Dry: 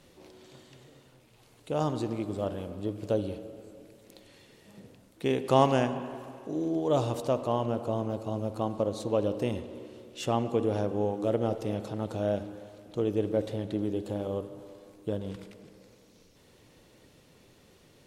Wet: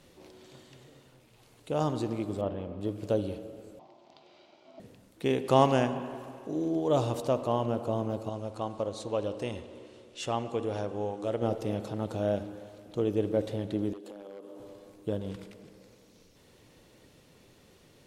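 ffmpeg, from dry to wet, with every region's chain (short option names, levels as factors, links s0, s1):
-filter_complex "[0:a]asettb=1/sr,asplit=3[s0][s1][s2];[s0]atrim=end=2.414[s3];[s1]atrim=start=2.41:end=2.81,asetpts=PTS-STARTPTS,afade=t=in:d=0.004:c=qsin,afade=t=out:st=0.396:d=0.004:c=qsin,lowpass=2700,equalizer=f=1500:t=o:w=0.27:g=-6[s4];[s2]atrim=start=2.806[s5];[s3][s4]acrossfade=d=0.004:c1=hsin:c2=qsin[s6];[s6][s5]acrossfade=d=0.004:c1=qsin:c2=hsin,asettb=1/sr,asplit=3[s7][s8][s9];[s7]atrim=end=3.794[s10];[s8]atrim=start=3.79:end=4.8,asetpts=PTS-STARTPTS,afade=t=in:d=0.004:c=qsin,afade=t=out:st=1.006:d=0.004:c=qsin,aeval=exprs='val(0)*sin(2*PI*460*n/s)':c=same,highpass=230,equalizer=f=360:t=q:w=4:g=9,equalizer=f=620:t=q:w=4:g=8,equalizer=f=980:t=q:w=4:g=-4,equalizer=f=1700:t=q:w=4:g=-6,lowpass=f=5300:w=0.5412,lowpass=f=5300:w=1.3066[s11];[s9]atrim=start=4.796[s12];[s10][s11]acrossfade=d=0.004:c1=hsin:c2=qsin[s13];[s13][s12]acrossfade=d=0.004:c1=qsin:c2=hsin,asettb=1/sr,asplit=3[s14][s15][s16];[s14]atrim=end=8.294[s17];[s15]atrim=start=8.29:end=11.42,asetpts=PTS-STARTPTS,afade=t=in:d=0.004:c=qsin,afade=t=out:st=3.126:d=0.004:c=qsin,lowpass=f=10000:w=0.5412,lowpass=f=10000:w=1.3066,equalizer=f=200:t=o:w=2.8:g=-7[s18];[s16]atrim=start=11.416[s19];[s17][s18]acrossfade=d=0.004:c1=hsin:c2=qsin[s20];[s20][s19]acrossfade=d=0.004:c1=qsin:c2=hsin,asettb=1/sr,asplit=3[s21][s22][s23];[s21]atrim=end=13.934[s24];[s22]atrim=start=13.93:end=14.6,asetpts=PTS-STARTPTS,afade=t=in:d=0.004:c=qsin,afade=t=out:st=0.666:d=0.004:c=qsin,highpass=f=230:w=0.5412,highpass=f=230:w=1.3066,aeval=exprs='0.0531*(abs(mod(val(0)/0.0531+3,4)-2)-1)':c=same,acompressor=threshold=0.00891:ratio=8:attack=3.2:release=140:knee=1:detection=peak[s25];[s23]atrim=start=14.596[s26];[s24][s25]acrossfade=d=0.004:c1=hsin:c2=qsin[s27];[s27][s26]acrossfade=d=0.004:c1=qsin:c2=hsin"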